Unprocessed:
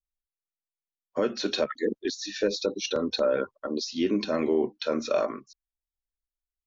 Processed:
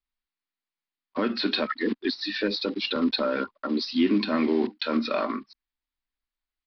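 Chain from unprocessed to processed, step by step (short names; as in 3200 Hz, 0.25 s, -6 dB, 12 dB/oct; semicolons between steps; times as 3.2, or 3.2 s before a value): block floating point 5-bit; in parallel at -2.5 dB: limiter -26 dBFS, peak gain reduction 11.5 dB; on the sum: graphic EQ 125/250/500/1000/2000/4000 Hz -7/+11/-6/+6/+6/+4 dB; downsampling 11025 Hz; gain -4 dB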